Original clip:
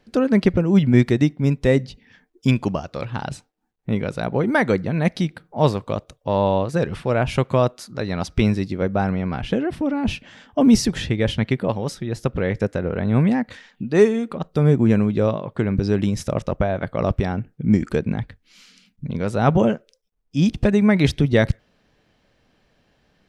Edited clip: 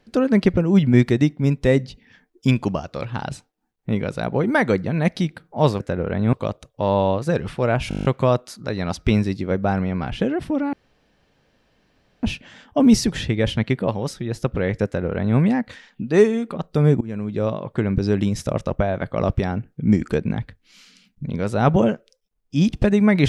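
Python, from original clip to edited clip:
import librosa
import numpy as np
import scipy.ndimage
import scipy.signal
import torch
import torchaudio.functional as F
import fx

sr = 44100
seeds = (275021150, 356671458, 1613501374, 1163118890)

y = fx.edit(x, sr, fx.stutter(start_s=7.36, slice_s=0.02, count=9),
    fx.insert_room_tone(at_s=10.04, length_s=1.5),
    fx.duplicate(start_s=12.66, length_s=0.53, to_s=5.8),
    fx.fade_in_from(start_s=14.82, length_s=0.63, floor_db=-23.5), tone=tone)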